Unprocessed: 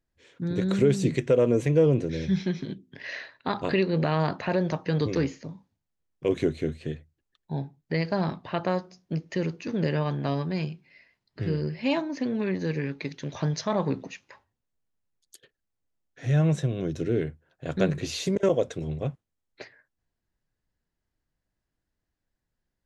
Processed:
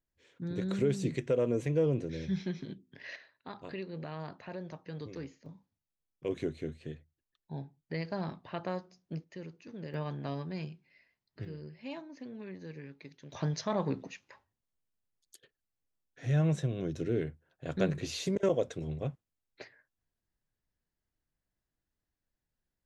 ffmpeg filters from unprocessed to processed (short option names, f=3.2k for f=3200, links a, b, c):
-af "asetnsamples=n=441:p=0,asendcmd='3.16 volume volume -16.5dB;5.46 volume volume -9.5dB;9.24 volume volume -16.5dB;9.94 volume volume -9.5dB;11.45 volume volume -16.5dB;13.32 volume volume -5.5dB',volume=-8dB"